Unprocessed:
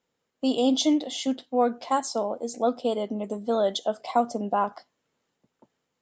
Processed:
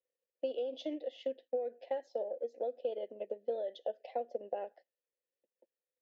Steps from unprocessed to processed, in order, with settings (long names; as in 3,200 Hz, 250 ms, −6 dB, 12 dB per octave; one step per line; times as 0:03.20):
noise gate −42 dBFS, range −7 dB
formant filter e
brickwall limiter −31.5 dBFS, peak gain reduction 11 dB
transient designer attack +7 dB, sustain −4 dB
loudspeaker in its box 240–5,700 Hz, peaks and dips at 350 Hz +6 dB, 810 Hz +4 dB, 1,300 Hz −10 dB
level −1.5 dB